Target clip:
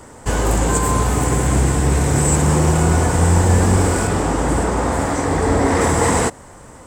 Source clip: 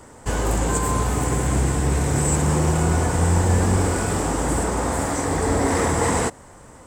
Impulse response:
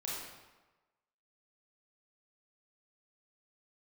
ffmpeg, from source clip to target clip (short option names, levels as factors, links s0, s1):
-filter_complex "[0:a]asettb=1/sr,asplit=3[s0][s1][s2];[s0]atrim=end=4.074[s3];[s1]atrim=start=4.07:end=5.81,asetpts=PTS-STARTPTS,afade=t=in:d=0.004:c=qsin,afade=t=out:st=1.736:d=0.004:c=qsin,equalizer=f=14000:w=0.33:g=-8[s4];[s2]atrim=start=5.806[s5];[s3][s4]acrossfade=d=0.004:c1=hsin:c2=qsin[s6];[s6][s5]acrossfade=d=0.004:c1=qsin:c2=hsin,volume=1.68"